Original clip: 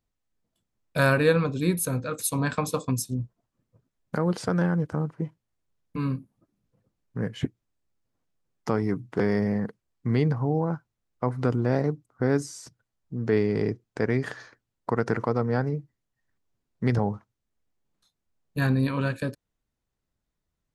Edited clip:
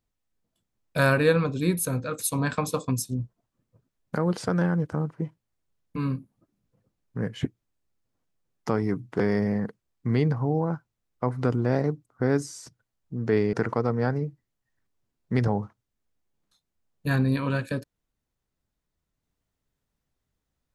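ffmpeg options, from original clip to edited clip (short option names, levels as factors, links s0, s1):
-filter_complex "[0:a]asplit=2[s0][s1];[s0]atrim=end=13.532[s2];[s1]atrim=start=15.038[s3];[s2][s3]acrossfade=d=0.004:c1=hsin:c2=hsin"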